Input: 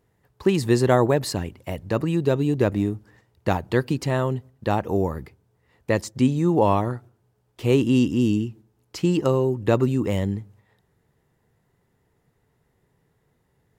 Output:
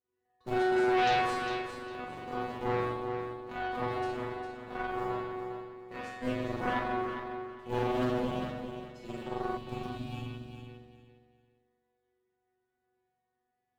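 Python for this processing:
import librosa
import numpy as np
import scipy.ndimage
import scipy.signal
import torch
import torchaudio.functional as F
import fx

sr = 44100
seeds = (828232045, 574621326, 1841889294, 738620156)

p1 = fx.cycle_switch(x, sr, every=3, mode='muted')
p2 = scipy.signal.sosfilt(scipy.signal.butter(2, 46.0, 'highpass', fs=sr, output='sos'), p1)
p3 = fx.high_shelf(p2, sr, hz=7600.0, db=-5.5)
p4 = fx.resonator_bank(p3, sr, root=59, chord='fifth', decay_s=0.78)
p5 = fx.rev_spring(p4, sr, rt60_s=1.5, pass_ms=(43,), chirp_ms=20, drr_db=-8.0)
p6 = fx.cheby_harmonics(p5, sr, harmonics=(8,), levels_db=(-12,), full_scale_db=-18.0)
p7 = fx.spec_box(p6, sr, start_s=9.57, length_s=1.12, low_hz=310.0, high_hz=2300.0, gain_db=-15)
y = p7 + fx.echo_feedback(p7, sr, ms=404, feedback_pct=24, wet_db=-8, dry=0)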